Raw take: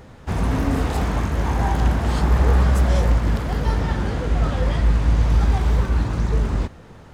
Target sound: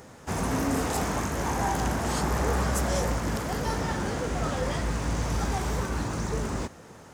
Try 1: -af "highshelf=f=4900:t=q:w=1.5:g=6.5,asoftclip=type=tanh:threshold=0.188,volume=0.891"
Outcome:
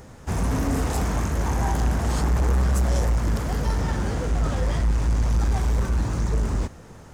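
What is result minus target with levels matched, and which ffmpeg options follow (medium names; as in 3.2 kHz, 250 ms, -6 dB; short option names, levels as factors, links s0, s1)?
250 Hz band -2.5 dB
-af "highpass=f=230:p=1,highshelf=f=4900:t=q:w=1.5:g=6.5,asoftclip=type=tanh:threshold=0.188,volume=0.891"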